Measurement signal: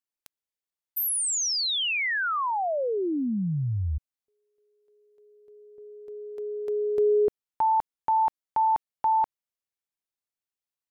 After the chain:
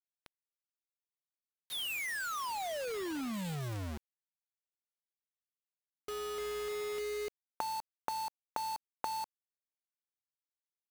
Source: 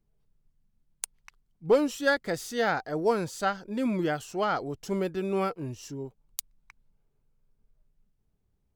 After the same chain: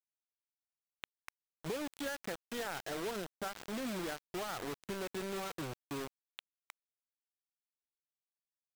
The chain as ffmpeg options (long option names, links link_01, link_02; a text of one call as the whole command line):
ffmpeg -i in.wav -af "highpass=170,acompressor=threshold=-40dB:ratio=6:attack=12:release=104:knee=6:detection=peak,aresample=8000,acrusher=bits=4:mode=log:mix=0:aa=0.000001,aresample=44100,aeval=exprs='sgn(val(0))*max(abs(val(0))-0.00178,0)':channel_layout=same,acrusher=bits=6:mix=0:aa=0.000001,volume=1dB" out.wav